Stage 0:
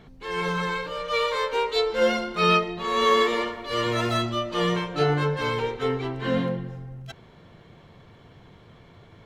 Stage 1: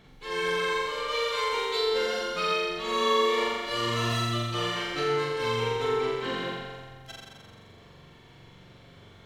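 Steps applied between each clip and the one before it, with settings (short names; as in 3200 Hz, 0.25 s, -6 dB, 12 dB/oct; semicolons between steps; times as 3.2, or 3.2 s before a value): high shelf 2100 Hz +8 dB; compressor, threshold -22 dBFS, peak gain reduction 9.5 dB; flutter echo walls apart 7.4 m, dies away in 1.5 s; gain -7 dB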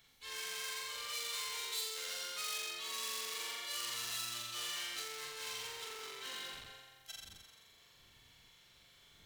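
wind noise 110 Hz -44 dBFS; hard clip -30.5 dBFS, distortion -7 dB; pre-emphasis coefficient 0.97; gain +2 dB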